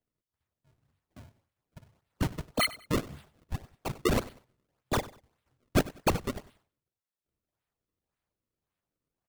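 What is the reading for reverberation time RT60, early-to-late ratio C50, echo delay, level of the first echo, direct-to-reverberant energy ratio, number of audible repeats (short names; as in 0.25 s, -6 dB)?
none, none, 96 ms, -19.0 dB, none, 2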